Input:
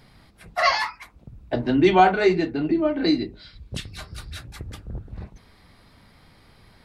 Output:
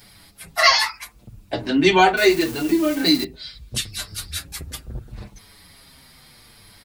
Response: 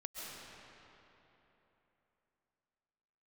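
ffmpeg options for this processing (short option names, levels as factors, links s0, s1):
-filter_complex "[0:a]asettb=1/sr,asplit=3[s0][s1][s2];[s0]atrim=end=2.174[s3];[s1]atrim=start=2.17:end=3.24,asetpts=PTS-STARTPTS,afade=t=in:d=0.004:c=qsin,afade=t=out:st=1.066:d=0.004:c=qsin,aeval=exprs='val(0)+0.5*0.0178*sgn(val(0))':c=same[s4];[s2]atrim=start=3.236[s5];[s3][s4]acrossfade=d=0.004:c1=hsin:c2=qsin[s6];[s6][s5]acrossfade=d=0.004:c1=qsin:c2=hsin,crystalizer=i=5:c=0,asplit=2[s7][s8];[s8]adelay=6.5,afreqshift=-0.75[s9];[s7][s9]amix=inputs=2:normalize=1,volume=1.41"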